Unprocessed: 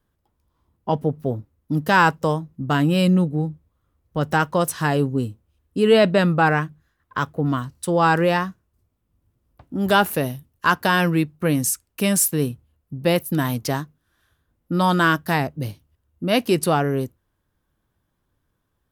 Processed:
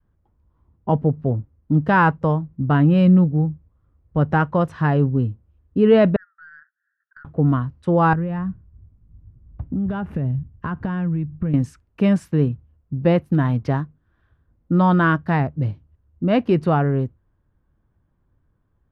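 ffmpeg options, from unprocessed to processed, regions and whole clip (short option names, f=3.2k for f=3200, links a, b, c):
-filter_complex "[0:a]asettb=1/sr,asplit=3[a][b][c];[a]atrim=end=6.164[d];[b]atrim=start=6.16:end=7.25,asetpts=PTS-STARTPTS,afade=t=in:d=0.004:c=qsin,afade=t=out:st=1.086:d=0.004:c=qsin,acompressor=threshold=-30dB:ratio=10:attack=3.2:release=140:knee=1:detection=peak,asuperpass=centerf=1600:order=8:qfactor=3.1,aeval=exprs='(tanh(50.1*val(0)+0.05)-tanh(0.05))/50.1':c=same[e];[c]atrim=start=7.246[f];[d][e]acrossfade=d=0.004:c1=hsin:c2=qsin[g];[g][f]acrossfade=d=0.004:c1=qsin:c2=hsin,asettb=1/sr,asplit=3[h][i][j];[h]atrim=end=8.134[k];[i]atrim=start=8.13:end=11.54,asetpts=PTS-STARTPTS,afade=t=in:d=0.004:c=qsin,afade=t=out:st=3.406:d=0.004:c=qsin,bass=f=250:g=13,treble=f=4k:g=-5,acompressor=threshold=-25dB:ratio=8:attack=3.2:release=140:knee=1:detection=peak,bandreject=f=4.2k:w=15[l];[j]atrim=start=11.536[m];[k][l]acrossfade=d=0.004:c1=hsin:c2=qsin[n];[n][m]acrossfade=d=0.004:c1=qsin:c2=hsin,adynamicequalizer=threshold=0.0251:dfrequency=350:dqfactor=0.79:tfrequency=350:tqfactor=0.79:attack=5:release=100:ratio=0.375:range=2:mode=cutabove:tftype=bell,lowpass=1.8k,lowshelf=f=210:g=9.5"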